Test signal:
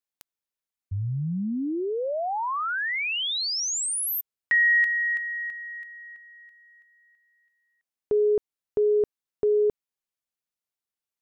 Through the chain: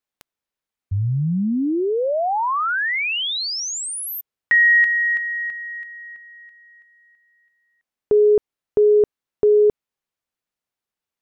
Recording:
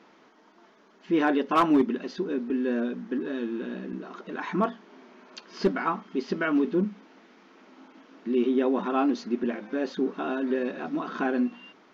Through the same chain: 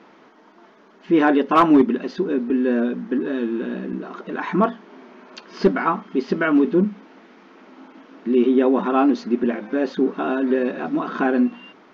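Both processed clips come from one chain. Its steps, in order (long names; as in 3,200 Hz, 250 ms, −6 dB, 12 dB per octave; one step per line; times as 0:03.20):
high-shelf EQ 4,200 Hz −9 dB
level +7.5 dB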